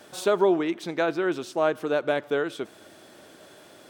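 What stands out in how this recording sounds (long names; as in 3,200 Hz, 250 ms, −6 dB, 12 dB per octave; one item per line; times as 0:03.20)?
background noise floor −51 dBFS
spectral slope −3.5 dB per octave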